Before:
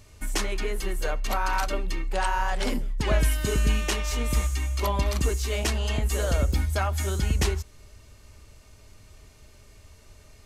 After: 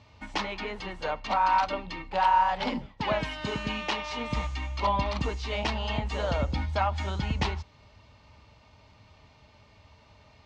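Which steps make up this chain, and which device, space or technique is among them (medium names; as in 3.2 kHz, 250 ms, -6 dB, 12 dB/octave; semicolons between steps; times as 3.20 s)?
2.85–4.32 s: high-pass 160 Hz 6 dB/octave; guitar cabinet (cabinet simulation 92–4400 Hz, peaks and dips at 380 Hz -10 dB, 890 Hz +9 dB, 1.6 kHz -4 dB)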